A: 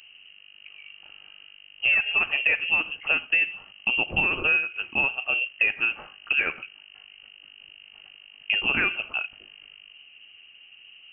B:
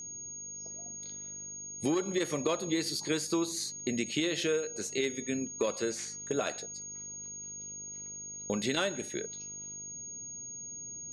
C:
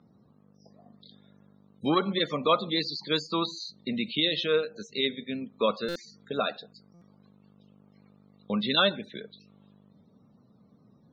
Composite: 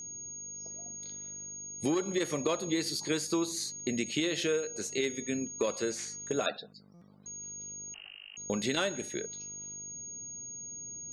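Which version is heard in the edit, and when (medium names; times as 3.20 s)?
B
6.46–7.26 s: from C
7.94–8.37 s: from A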